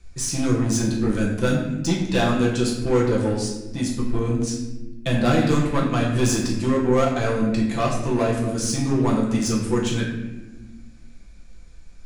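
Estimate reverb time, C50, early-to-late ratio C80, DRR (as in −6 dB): 1.1 s, 4.0 dB, 5.5 dB, −4.5 dB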